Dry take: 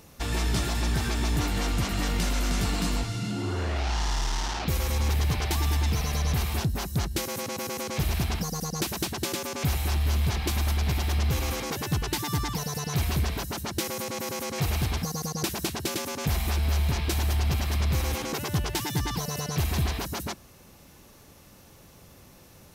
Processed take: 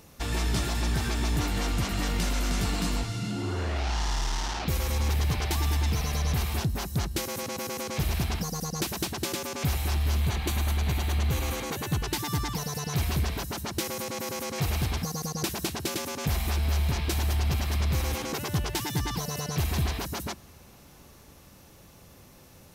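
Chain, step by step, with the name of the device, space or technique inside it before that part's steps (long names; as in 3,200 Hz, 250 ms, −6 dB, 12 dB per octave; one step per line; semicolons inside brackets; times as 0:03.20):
compressed reverb return (on a send at −11.5 dB: convolution reverb RT60 3.0 s, pre-delay 102 ms + downward compressor, threshold −41 dBFS, peak gain reduction 18.5 dB)
0:10.21–0:12.02: on the sum: notch filter 5,200 Hz, Q 6
level −1 dB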